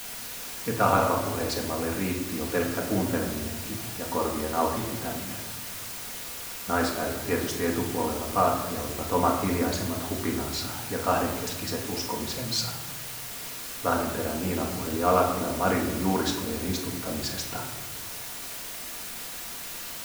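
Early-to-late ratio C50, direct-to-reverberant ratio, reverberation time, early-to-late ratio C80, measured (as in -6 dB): 5.5 dB, -1.0 dB, 1.2 s, 7.5 dB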